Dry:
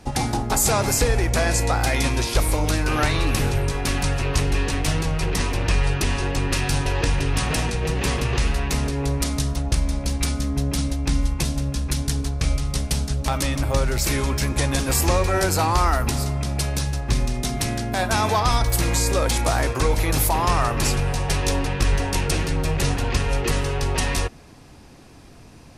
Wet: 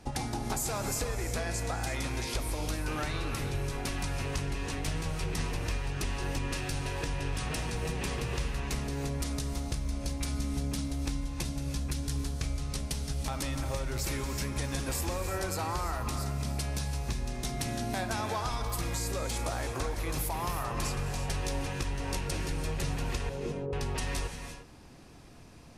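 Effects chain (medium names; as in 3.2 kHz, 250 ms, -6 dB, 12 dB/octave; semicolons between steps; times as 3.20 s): 23.29–23.73 s: Chebyshev band-pass 160–560 Hz, order 2; compression, threshold -23 dBFS, peak gain reduction 9.5 dB; gated-style reverb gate 380 ms rising, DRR 7 dB; trim -7 dB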